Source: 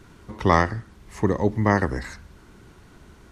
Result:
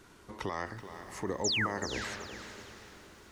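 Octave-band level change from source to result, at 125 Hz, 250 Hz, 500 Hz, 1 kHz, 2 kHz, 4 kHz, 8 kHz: -18.0 dB, -15.0 dB, -13.0 dB, -14.0 dB, -7.5 dB, +6.0 dB, +6.0 dB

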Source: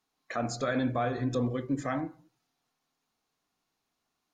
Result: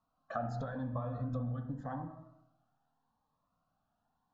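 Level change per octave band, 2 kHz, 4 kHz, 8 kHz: -12.5 dB, under -15 dB, under -20 dB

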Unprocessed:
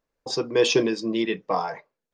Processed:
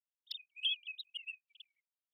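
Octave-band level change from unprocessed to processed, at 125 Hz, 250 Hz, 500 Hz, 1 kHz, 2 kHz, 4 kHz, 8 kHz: under -40 dB, under -40 dB, under -40 dB, under -40 dB, -13.5 dB, -7.5 dB, under -40 dB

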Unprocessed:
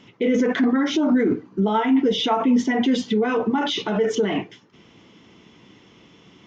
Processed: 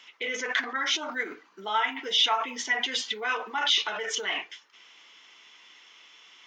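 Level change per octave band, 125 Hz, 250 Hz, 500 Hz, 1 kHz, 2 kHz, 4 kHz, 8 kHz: under -30 dB, -26.0 dB, -15.0 dB, -4.5 dB, +2.0 dB, +3.5 dB, no reading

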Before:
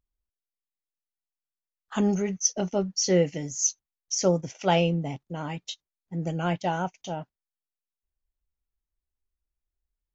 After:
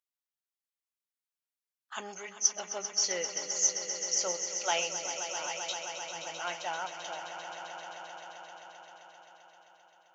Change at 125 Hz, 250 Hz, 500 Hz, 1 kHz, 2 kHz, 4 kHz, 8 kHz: -30.0 dB, -24.5 dB, -11.5 dB, -5.0 dB, 0.0 dB, 0.0 dB, no reading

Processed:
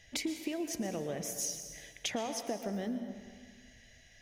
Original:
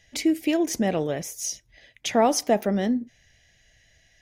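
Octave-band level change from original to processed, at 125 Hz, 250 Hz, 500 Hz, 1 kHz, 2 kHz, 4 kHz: -11.5 dB, -13.0 dB, -14.0 dB, -16.0 dB, -10.0 dB, -7.5 dB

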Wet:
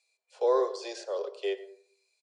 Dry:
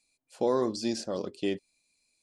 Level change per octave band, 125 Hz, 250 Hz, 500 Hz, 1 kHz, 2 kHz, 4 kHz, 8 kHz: under -40 dB, -10.5 dB, +2.0 dB, +2.0 dB, 0.0 dB, -3.5 dB, -6.5 dB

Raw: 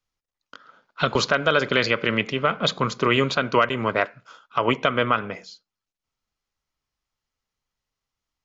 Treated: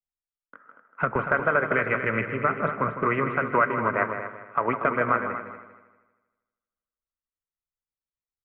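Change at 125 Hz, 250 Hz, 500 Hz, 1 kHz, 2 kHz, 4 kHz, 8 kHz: -4.0 dB, -4.0 dB, -3.5 dB, -0.5 dB, -1.5 dB, under -25 dB, no reading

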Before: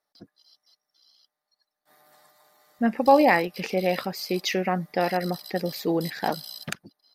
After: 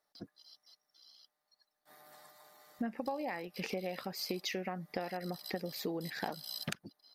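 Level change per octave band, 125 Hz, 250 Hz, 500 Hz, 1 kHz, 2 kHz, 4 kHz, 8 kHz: -12.0 dB, -14.0 dB, -16.0 dB, -18.0 dB, -14.5 dB, -8.5 dB, -8.5 dB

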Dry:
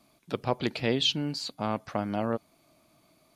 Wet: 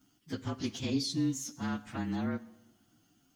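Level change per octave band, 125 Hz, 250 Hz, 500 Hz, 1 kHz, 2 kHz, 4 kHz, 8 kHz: -2.5 dB, -0.5 dB, -12.0 dB, -10.5 dB, -7.0 dB, -10.5 dB, +3.0 dB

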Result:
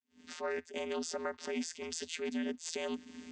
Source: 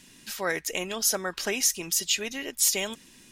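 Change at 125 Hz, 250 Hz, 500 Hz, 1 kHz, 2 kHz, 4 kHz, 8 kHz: under -15 dB, -1.5 dB, -4.0 dB, -7.0 dB, -11.5 dB, -14.5 dB, -19.5 dB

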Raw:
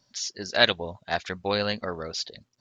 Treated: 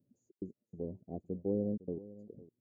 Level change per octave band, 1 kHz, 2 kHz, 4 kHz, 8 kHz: -28.0 dB, under -40 dB, under -40 dB, under -40 dB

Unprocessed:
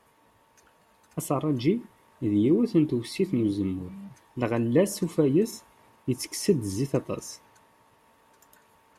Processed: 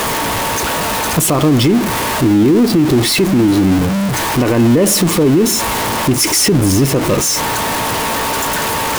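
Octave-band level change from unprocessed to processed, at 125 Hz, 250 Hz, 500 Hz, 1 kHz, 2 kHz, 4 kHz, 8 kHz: +15.0 dB, +14.0 dB, +12.0 dB, +24.0 dB, +24.5 dB, +24.0 dB, +23.5 dB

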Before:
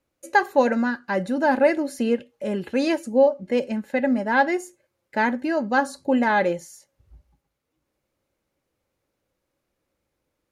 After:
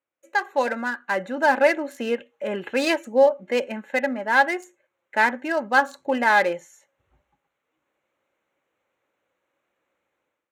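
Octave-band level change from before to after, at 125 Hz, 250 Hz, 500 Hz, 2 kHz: no reading, -6.5 dB, -0.5 dB, +3.5 dB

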